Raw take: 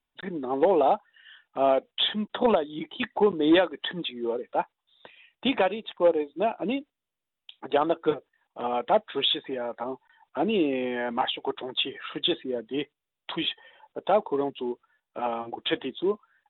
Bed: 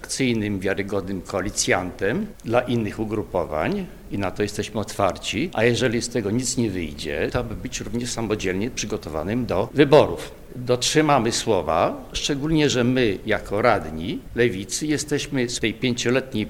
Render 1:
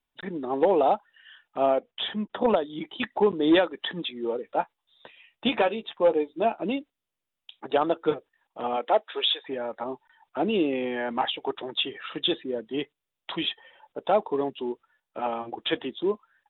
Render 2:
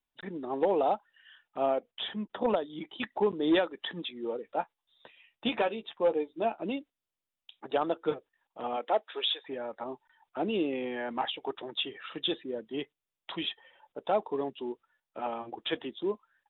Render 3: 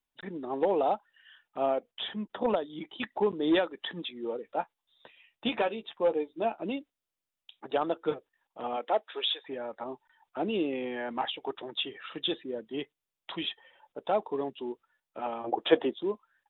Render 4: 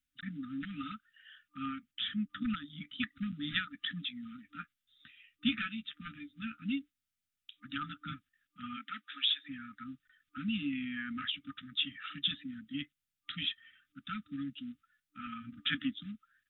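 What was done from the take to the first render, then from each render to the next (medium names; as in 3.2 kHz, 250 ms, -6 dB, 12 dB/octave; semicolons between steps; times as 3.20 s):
1.66–2.54 s: distance through air 280 m; 4.45–6.63 s: doubling 13 ms -8 dB; 8.76–9.48 s: high-pass 230 Hz -> 570 Hz 24 dB/octave
trim -5.5 dB
15.44–15.94 s: peaking EQ 590 Hz +14 dB 2.3 oct
FFT band-reject 300–1200 Hz; peaking EQ 80 Hz +5 dB 1.7 oct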